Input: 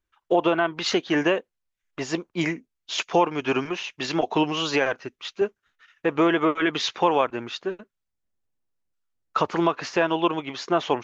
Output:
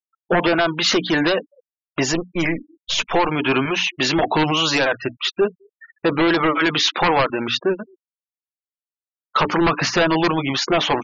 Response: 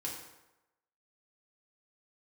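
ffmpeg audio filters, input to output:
-filter_complex "[0:a]asettb=1/sr,asplit=3[a][b][c];[a]atrim=end=2.134[d];[b]atrim=start=2.13:end=3.29,asetpts=PTS-STARTPTS,afade=t=in:d=0.004:c=qsin,afade=t=out:st=1.156:d=0.004:c=qsin,aeval=exprs='if(lt(val(0),0),0.447*val(0),val(0))':c=same[e];[c]atrim=start=3.286[f];[d][e]acrossfade=d=0.004:c1=hsin:c2=qsin[g];[g][f]acrossfade=d=0.004:c1=qsin:c2=hsin,bandreject=f=60:t=h:w=6,bandreject=f=120:t=h:w=6,bandreject=f=180:t=h:w=6,bandreject=f=240:t=h:w=6,bandreject=f=300:t=h:w=6,asettb=1/sr,asplit=3[h][i][j];[h]atrim=end=9.614[k];[i]atrim=start=9.61:end=10.58,asetpts=PTS-STARTPTS,afade=t=in:d=0.004:c=qsin,afade=t=out:st=0.966:d=0.004:c=qsin,lowshelf=f=220:g=7.5[l];[j]atrim=start=10.576[m];[k][l]acrossfade=d=0.004:c1=hsin:c2=qsin[n];[n][m]acrossfade=d=0.004:c1=qsin:c2=hsin,bandreject=f=430:w=12,aeval=exprs='0.422*sin(PI/2*2.82*val(0)/0.422)':c=same,alimiter=limit=-12dB:level=0:latency=1:release=25,asplit=2[o][p];[p]adelay=210,highpass=300,lowpass=3.4k,asoftclip=type=hard:threshold=-21.5dB,volume=-23dB[q];[o][q]amix=inputs=2:normalize=0,adynamicequalizer=threshold=0.0316:dfrequency=370:dqfactor=1.2:tfrequency=370:tqfactor=1.2:attack=5:release=100:ratio=0.375:range=2.5:mode=cutabove:tftype=bell,afftfilt=real='re*gte(hypot(re,im),0.0398)':imag='im*gte(hypot(re,im),0.0398)':win_size=1024:overlap=0.75,volume=1dB"

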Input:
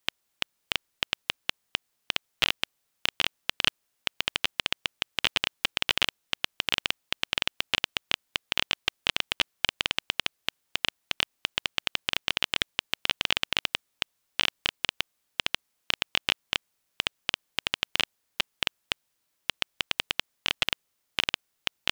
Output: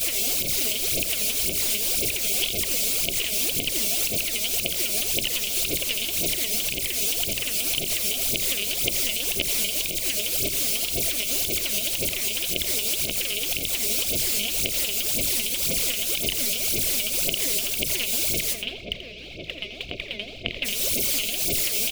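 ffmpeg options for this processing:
-filter_complex "[0:a]aeval=exprs='val(0)+0.5*0.0841*sgn(val(0))':c=same,asplit=3[a][b][c];[a]afade=t=out:st=18.52:d=0.02[d];[b]lowpass=f=3.2k:w=0.5412,lowpass=f=3.2k:w=1.3066,afade=t=in:st=18.52:d=0.02,afade=t=out:st=20.64:d=0.02[e];[c]afade=t=in:st=20.64:d=0.02[f];[d][e][f]amix=inputs=3:normalize=0,afftfilt=real='re*(1-between(b*sr/4096,710,2100))':imag='im*(1-between(b*sr/4096,710,2100))':win_size=4096:overlap=0.75,agate=range=-6dB:threshold=-33dB:ratio=16:detection=peak,adynamicequalizer=threshold=0.00126:dfrequency=380:dqfactor=6.6:tfrequency=380:tqfactor=6.6:attack=5:release=100:ratio=0.375:range=2.5:mode=boostabove:tftype=bell,alimiter=limit=-14dB:level=0:latency=1:release=84,aphaser=in_gain=1:out_gain=1:delay=4.9:decay=0.77:speed=1.9:type=sinusoidal,aeval=exprs='val(0)+0.00251*(sin(2*PI*60*n/s)+sin(2*PI*2*60*n/s)/2+sin(2*PI*3*60*n/s)/3+sin(2*PI*4*60*n/s)/4+sin(2*PI*5*60*n/s)/5)':c=same,aecho=1:1:84:0.251"

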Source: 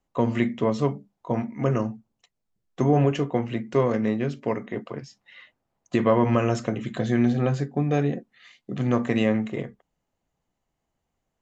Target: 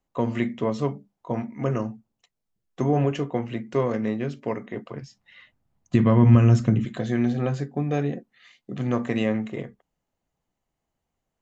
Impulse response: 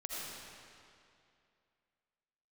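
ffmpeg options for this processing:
-filter_complex "[0:a]asettb=1/sr,asplit=3[a][b][c];[a]atrim=end=4.744[d];[b]atrim=start=4.74:end=6.85,asetpts=PTS-STARTPTS,afade=t=in:d=0.004:c=qsin,afade=t=out:st=2.106:d=0.004:c=qsin,asubboost=boost=11.5:cutoff=210[e];[c]atrim=start=6.846[f];[d][e]acrossfade=d=0.004:c1=hsin:c2=qsin[g];[g][f]acrossfade=d=0.004:c1=qsin:c2=hsin,volume=-2dB"

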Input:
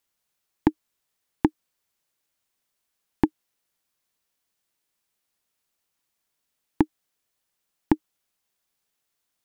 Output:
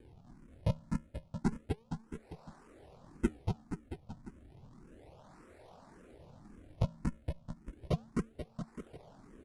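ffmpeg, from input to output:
-filter_complex "[0:a]acrossover=split=260 2300:gain=0.158 1 0.224[a][b][c];[a][b][c]amix=inputs=3:normalize=0,acrossover=split=120|630[d][e][f];[e]bandreject=f=434.5:t=h:w=4,bandreject=f=869:t=h:w=4,bandreject=f=1.3035k:t=h:w=4[g];[f]acompressor=mode=upward:threshold=-41dB:ratio=2.5[h];[d][g][h]amix=inputs=3:normalize=0,acrusher=samples=33:mix=1:aa=0.000001:lfo=1:lforange=52.8:lforate=0.32,aeval=exprs='(mod(21.1*val(0)+1,2)-1)/21.1':c=same,highshelf=f=2.2k:g=-10,aecho=1:1:250|475|677.5|859.8|1024:0.631|0.398|0.251|0.158|0.1,asetrate=22696,aresample=44100,atempo=1.94306,asplit=2[i][j];[j]afreqshift=1.8[k];[i][k]amix=inputs=2:normalize=1,volume=10dB"

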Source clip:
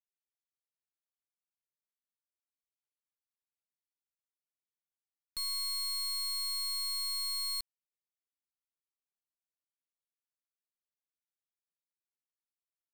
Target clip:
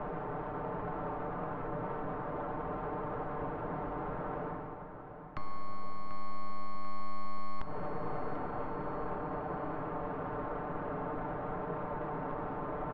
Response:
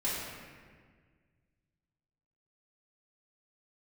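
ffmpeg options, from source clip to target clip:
-filter_complex "[0:a]lowpass=f=1.1k:w=0.5412,lowpass=f=1.1k:w=1.3066,aecho=1:1:6.7:0.73,areverse,acompressor=mode=upward:threshold=-40dB:ratio=2.5,areverse,alimiter=level_in=24dB:limit=-24dB:level=0:latency=1:release=174,volume=-24dB,acompressor=threshold=-53dB:ratio=6,aeval=exprs='0.00708*sin(PI/2*5.01*val(0)/0.00708)':c=same,aecho=1:1:740|1480|2220|2960|3700:0.251|0.128|0.0653|0.0333|0.017,asplit=2[a][b];[1:a]atrim=start_sample=2205,asetrate=31752,aresample=44100,lowpass=2k[c];[b][c]afir=irnorm=-1:irlink=0,volume=-14.5dB[d];[a][d]amix=inputs=2:normalize=0,volume=12dB"

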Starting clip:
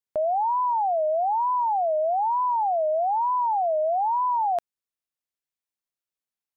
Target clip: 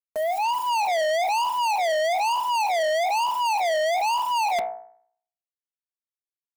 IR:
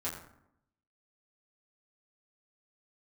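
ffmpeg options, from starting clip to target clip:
-filter_complex "[0:a]acrossover=split=170[a][b];[b]dynaudnorm=f=110:g=9:m=13.5dB[c];[a][c]amix=inputs=2:normalize=0,acrusher=bits=5:mix=0:aa=0.000001,aecho=1:1:4.5:0.87,bandreject=f=60.55:t=h:w=4,bandreject=f=121.1:t=h:w=4,bandreject=f=181.65:t=h:w=4,bandreject=f=242.2:t=h:w=4,bandreject=f=302.75:t=h:w=4,bandreject=f=363.3:t=h:w=4,bandreject=f=423.85:t=h:w=4,bandreject=f=484.4:t=h:w=4,bandreject=f=544.95:t=h:w=4,bandreject=f=605.5:t=h:w=4,bandreject=f=666.05:t=h:w=4,bandreject=f=726.6:t=h:w=4,bandreject=f=787.15:t=h:w=4,bandreject=f=847.7:t=h:w=4,bandreject=f=908.25:t=h:w=4,bandreject=f=968.8:t=h:w=4,bandreject=f=1.02935k:t=h:w=4,bandreject=f=1.0899k:t=h:w=4,bandreject=f=1.15045k:t=h:w=4,bandreject=f=1.211k:t=h:w=4,bandreject=f=1.27155k:t=h:w=4,bandreject=f=1.3321k:t=h:w=4,bandreject=f=1.39265k:t=h:w=4,bandreject=f=1.4532k:t=h:w=4,bandreject=f=1.51375k:t=h:w=4,bandreject=f=1.5743k:t=h:w=4,bandreject=f=1.63485k:t=h:w=4,bandreject=f=1.6954k:t=h:w=4,bandreject=f=1.75595k:t=h:w=4,bandreject=f=1.8165k:t=h:w=4,bandreject=f=1.87705k:t=h:w=4,bandreject=f=1.9376k:t=h:w=4,bandreject=f=1.99815k:t=h:w=4,bandreject=f=2.0587k:t=h:w=4,bandreject=f=2.11925k:t=h:w=4,bandreject=f=2.1798k:t=h:w=4,bandreject=f=2.24035k:t=h:w=4,bandreject=f=2.3009k:t=h:w=4,asoftclip=type=tanh:threshold=-20.5dB,volume=-1.5dB"

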